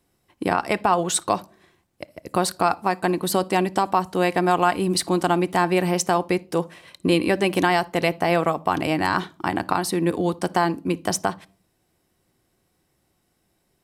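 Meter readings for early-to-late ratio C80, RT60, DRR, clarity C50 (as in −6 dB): 30.5 dB, non-exponential decay, 12.0 dB, 23.5 dB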